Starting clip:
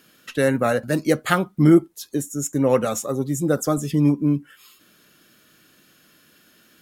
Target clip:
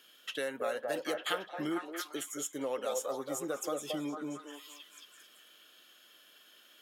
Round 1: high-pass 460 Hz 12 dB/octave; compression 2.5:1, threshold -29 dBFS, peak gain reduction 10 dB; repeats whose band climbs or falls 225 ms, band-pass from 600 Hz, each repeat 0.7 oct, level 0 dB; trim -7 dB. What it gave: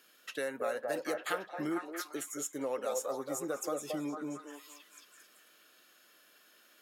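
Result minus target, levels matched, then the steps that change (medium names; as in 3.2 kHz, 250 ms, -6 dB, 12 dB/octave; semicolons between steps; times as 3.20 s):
4 kHz band -6.5 dB
add after compression: peaking EQ 3.2 kHz +12 dB 0.29 oct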